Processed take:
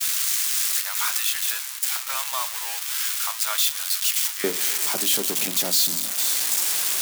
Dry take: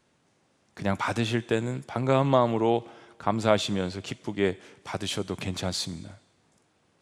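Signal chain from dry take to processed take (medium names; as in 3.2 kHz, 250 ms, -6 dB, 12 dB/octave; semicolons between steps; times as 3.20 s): zero-crossing glitches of -13 dBFS; expander -24 dBFS; high-pass 1.1 kHz 24 dB/octave, from 4.44 s 190 Hz; reverberation RT60 0.25 s, pre-delay 5 ms, DRR 11.5 dB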